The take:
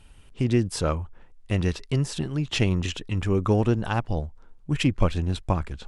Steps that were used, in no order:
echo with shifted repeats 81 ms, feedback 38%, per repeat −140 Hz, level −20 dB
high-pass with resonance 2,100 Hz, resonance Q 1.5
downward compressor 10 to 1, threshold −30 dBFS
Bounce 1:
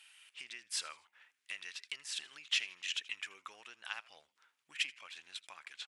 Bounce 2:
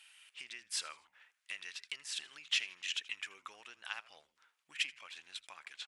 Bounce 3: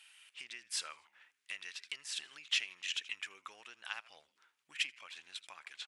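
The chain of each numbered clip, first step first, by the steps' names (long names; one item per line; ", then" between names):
downward compressor, then echo with shifted repeats, then high-pass with resonance
downward compressor, then high-pass with resonance, then echo with shifted repeats
echo with shifted repeats, then downward compressor, then high-pass with resonance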